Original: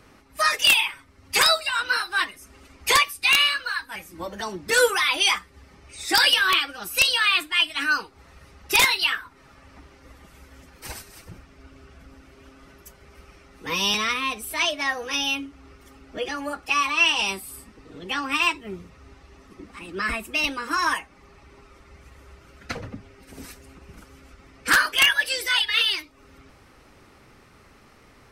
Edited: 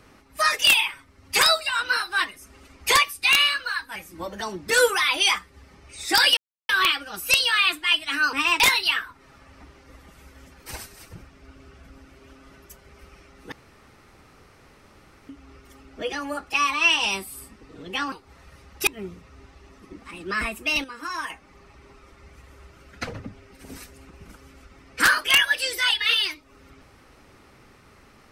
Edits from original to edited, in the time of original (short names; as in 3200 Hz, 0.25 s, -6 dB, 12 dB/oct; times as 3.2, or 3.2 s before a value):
6.37 insert silence 0.32 s
8.01–8.76 swap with 18.28–18.55
13.68–15.45 room tone
20.52–20.98 gain -8 dB